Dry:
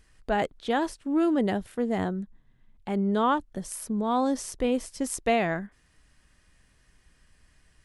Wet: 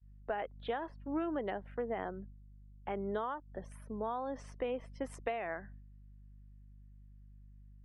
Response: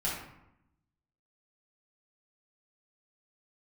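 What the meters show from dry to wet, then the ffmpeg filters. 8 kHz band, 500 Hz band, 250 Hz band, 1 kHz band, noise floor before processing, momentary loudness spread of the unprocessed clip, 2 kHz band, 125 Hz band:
-24.5 dB, -9.0 dB, -15.0 dB, -11.0 dB, -64 dBFS, 11 LU, -11.0 dB, -13.0 dB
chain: -filter_complex "[0:a]acrossover=split=430 3300:gain=0.0708 1 0.1[a][b][c];[a][b][c]amix=inputs=3:normalize=0,aeval=exprs='val(0)+0.00178*(sin(2*PI*50*n/s)+sin(2*PI*2*50*n/s)/2+sin(2*PI*3*50*n/s)/3+sin(2*PI*4*50*n/s)/4+sin(2*PI*5*50*n/s)/5)':c=same,agate=range=-33dB:threshold=-51dB:ratio=3:detection=peak,acompressor=threshold=-32dB:ratio=20,afftdn=nr=20:nf=-56,lowshelf=f=310:g=9,volume=-2.5dB"

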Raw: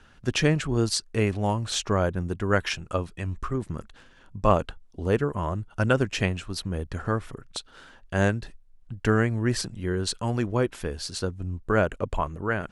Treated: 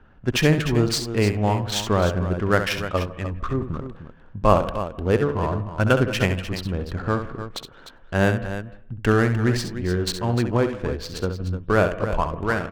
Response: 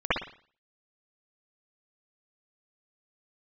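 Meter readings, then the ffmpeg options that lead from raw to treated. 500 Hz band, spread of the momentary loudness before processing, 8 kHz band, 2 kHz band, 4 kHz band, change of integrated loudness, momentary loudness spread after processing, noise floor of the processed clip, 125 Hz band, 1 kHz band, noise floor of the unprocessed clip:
+4.5 dB, 10 LU, +0.5 dB, +4.0 dB, +3.0 dB, +4.0 dB, 10 LU, -47 dBFS, +4.5 dB, +4.5 dB, -54 dBFS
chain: -filter_complex "[0:a]adynamicsmooth=sensitivity=6:basefreq=1.4k,aecho=1:1:67|301:0.355|0.282,asplit=2[a][b];[1:a]atrim=start_sample=2205,adelay=97[c];[b][c]afir=irnorm=-1:irlink=0,volume=-32.5dB[d];[a][d]amix=inputs=2:normalize=0,volume=3.5dB"

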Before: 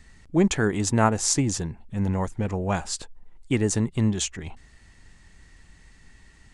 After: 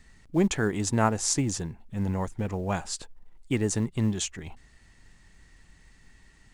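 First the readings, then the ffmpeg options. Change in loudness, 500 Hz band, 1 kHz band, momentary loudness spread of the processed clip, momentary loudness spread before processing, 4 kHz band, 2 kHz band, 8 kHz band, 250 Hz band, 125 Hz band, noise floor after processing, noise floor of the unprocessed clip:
-3.5 dB, -3.5 dB, -3.5 dB, 11 LU, 11 LU, -3.5 dB, -3.5 dB, -3.5 dB, -3.5 dB, -3.5 dB, -57 dBFS, -54 dBFS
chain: -filter_complex "[0:a]equalizer=f=71:w=7.6:g=-8.5,asplit=2[a][b];[b]acrusher=bits=5:mode=log:mix=0:aa=0.000001,volume=-11dB[c];[a][c]amix=inputs=2:normalize=0,volume=-5.5dB"

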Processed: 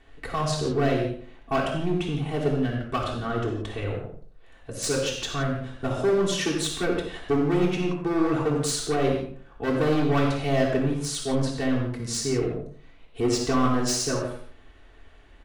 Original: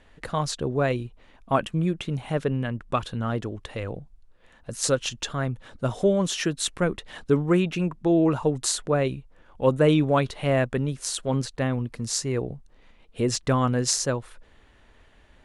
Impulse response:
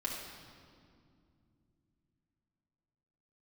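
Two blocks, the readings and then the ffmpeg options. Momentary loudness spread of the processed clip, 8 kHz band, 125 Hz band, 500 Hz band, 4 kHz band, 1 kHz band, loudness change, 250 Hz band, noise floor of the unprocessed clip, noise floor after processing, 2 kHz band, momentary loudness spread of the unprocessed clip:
9 LU, -2.0 dB, -1.5 dB, 0.0 dB, +0.5 dB, +0.5 dB, -0.5 dB, +0.5 dB, -56 dBFS, -51 dBFS, +0.5 dB, 11 LU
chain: -filter_complex "[0:a]volume=21dB,asoftclip=hard,volume=-21dB,asplit=2[a][b];[b]adelay=86,lowpass=f=2.1k:p=1,volume=-10dB,asplit=2[c][d];[d]adelay=86,lowpass=f=2.1k:p=1,volume=0.33,asplit=2[e][f];[f]adelay=86,lowpass=f=2.1k:p=1,volume=0.33,asplit=2[g][h];[h]adelay=86,lowpass=f=2.1k:p=1,volume=0.33[i];[a][c][e][g][i]amix=inputs=5:normalize=0[j];[1:a]atrim=start_sample=2205,afade=t=out:st=0.25:d=0.01,atrim=end_sample=11466,asetrate=48510,aresample=44100[k];[j][k]afir=irnorm=-1:irlink=0"

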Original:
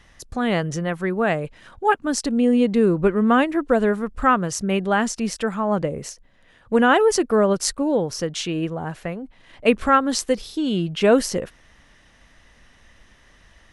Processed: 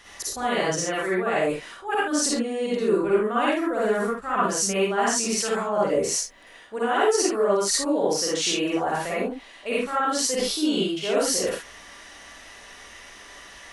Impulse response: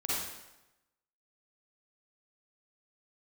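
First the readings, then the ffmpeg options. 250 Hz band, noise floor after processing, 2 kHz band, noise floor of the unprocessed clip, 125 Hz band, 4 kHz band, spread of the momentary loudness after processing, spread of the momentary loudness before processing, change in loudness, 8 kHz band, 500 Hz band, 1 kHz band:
-6.5 dB, -47 dBFS, -3.0 dB, -54 dBFS, -9.5 dB, +3.0 dB, 21 LU, 11 LU, -3.0 dB, +5.0 dB, -2.5 dB, -3.0 dB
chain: -filter_complex "[0:a]bass=f=250:g=-15,treble=f=4k:g=5,areverse,acompressor=threshold=-32dB:ratio=6,areverse[a];[1:a]atrim=start_sample=2205,atrim=end_sample=6174[b];[a][b]afir=irnorm=-1:irlink=0,volume=6dB"

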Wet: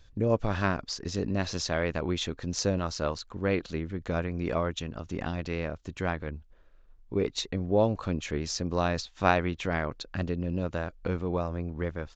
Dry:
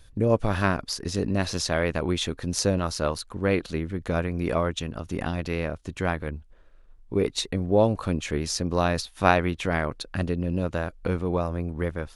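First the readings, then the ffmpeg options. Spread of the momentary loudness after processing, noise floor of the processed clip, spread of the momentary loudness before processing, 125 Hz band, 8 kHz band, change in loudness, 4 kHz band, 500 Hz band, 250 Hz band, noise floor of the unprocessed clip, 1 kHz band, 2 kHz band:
8 LU, -56 dBFS, 8 LU, -4.0 dB, -5.0 dB, -4.0 dB, -4.0 dB, -4.0 dB, -4.0 dB, -52 dBFS, -4.0 dB, -4.0 dB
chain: -af "aresample=16000,aresample=44100,volume=-4dB"

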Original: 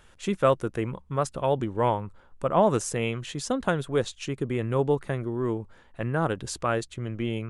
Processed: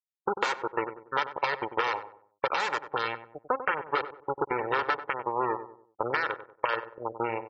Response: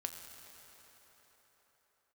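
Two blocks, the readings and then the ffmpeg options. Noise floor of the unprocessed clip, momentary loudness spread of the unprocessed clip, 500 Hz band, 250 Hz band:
-56 dBFS, 9 LU, -6.5 dB, -11.0 dB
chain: -filter_complex "[0:a]aresample=16000,aeval=exprs='(mod(6.68*val(0)+1,2)-1)/6.68':c=same,aresample=44100,acrusher=bits=3:mix=0:aa=0.5,alimiter=limit=-16dB:level=0:latency=1:release=68,afwtdn=0.0158,afftfilt=real='re*gte(hypot(re,im),0.0251)':imag='im*gte(hypot(re,im),0.0251)':win_size=1024:overlap=0.75,highpass=f=770:p=1,acompressor=threshold=-35dB:ratio=12,lowpass=f=2.4k:p=1,equalizer=f=1.2k:t=o:w=1.7:g=7,aecho=1:1:2.2:0.5,asplit=2[a][b];[b]adelay=95,lowpass=f=1.1k:p=1,volume=-10dB,asplit=2[c][d];[d]adelay=95,lowpass=f=1.1k:p=1,volume=0.41,asplit=2[e][f];[f]adelay=95,lowpass=f=1.1k:p=1,volume=0.41,asplit=2[g][h];[h]adelay=95,lowpass=f=1.1k:p=1,volume=0.41[i];[a][c][e][g][i]amix=inputs=5:normalize=0,volume=7dB"

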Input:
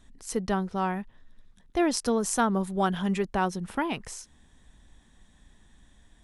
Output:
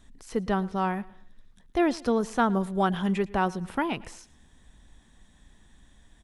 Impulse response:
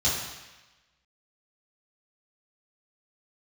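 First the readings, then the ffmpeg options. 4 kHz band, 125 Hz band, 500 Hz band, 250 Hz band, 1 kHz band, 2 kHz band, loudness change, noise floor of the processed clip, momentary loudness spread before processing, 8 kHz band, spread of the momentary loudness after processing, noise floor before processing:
-2.5 dB, +1.0 dB, +1.0 dB, +1.0 dB, +1.0 dB, +1.0 dB, +0.5 dB, -59 dBFS, 11 LU, -12.0 dB, 9 LU, -60 dBFS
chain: -filter_complex "[0:a]acrossover=split=3900[a][b];[b]acompressor=threshold=-49dB:ratio=4:attack=1:release=60[c];[a][c]amix=inputs=2:normalize=0,asplit=2[d][e];[e]aecho=0:1:111|222|333:0.0841|0.032|0.0121[f];[d][f]amix=inputs=2:normalize=0,volume=1dB"

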